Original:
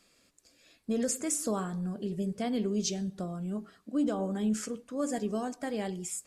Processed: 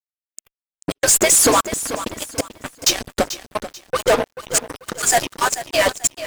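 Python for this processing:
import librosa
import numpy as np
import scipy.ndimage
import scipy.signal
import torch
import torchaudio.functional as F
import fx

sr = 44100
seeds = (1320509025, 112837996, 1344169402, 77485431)

y = fx.hpss_only(x, sr, part='percussive')
y = fx.fuzz(y, sr, gain_db=44.0, gate_db=-51.0)
y = fx.step_gate(y, sr, bpm=131, pattern='x.xxx..x.xxxxx.x', floor_db=-60.0, edge_ms=4.5)
y = fx.noise_reduce_blind(y, sr, reduce_db=12)
y = fx.echo_crushed(y, sr, ms=438, feedback_pct=35, bits=7, wet_db=-12.5)
y = F.gain(torch.from_numpy(y), 2.5).numpy()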